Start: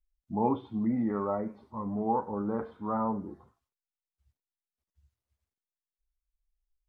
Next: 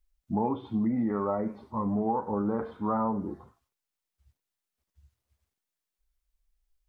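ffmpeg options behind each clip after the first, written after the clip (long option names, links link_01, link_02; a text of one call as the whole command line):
ffmpeg -i in.wav -af "acompressor=threshold=-31dB:ratio=6,volume=6.5dB" out.wav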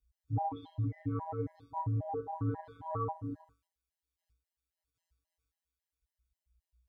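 ffmpeg -i in.wav -af "afftfilt=real='hypot(re,im)*cos(PI*b)':imag='0':win_size=1024:overlap=0.75,afreqshift=-62,afftfilt=real='re*gt(sin(2*PI*3.7*pts/sr)*(1-2*mod(floor(b*sr/1024/540),2)),0)':imag='im*gt(sin(2*PI*3.7*pts/sr)*(1-2*mod(floor(b*sr/1024/540),2)),0)':win_size=1024:overlap=0.75" out.wav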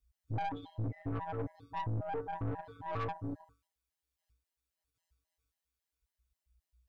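ffmpeg -i in.wav -af "aeval=exprs='(tanh(63.1*val(0)+0.5)-tanh(0.5))/63.1':channel_layout=same,volume=3.5dB" out.wav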